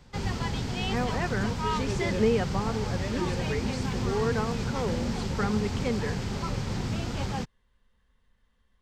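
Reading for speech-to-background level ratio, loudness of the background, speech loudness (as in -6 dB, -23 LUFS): -1.5 dB, -31.0 LUFS, -32.5 LUFS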